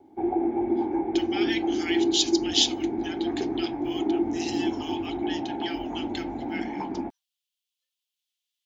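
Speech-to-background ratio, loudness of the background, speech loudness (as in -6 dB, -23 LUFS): -3.0 dB, -28.0 LUFS, -31.0 LUFS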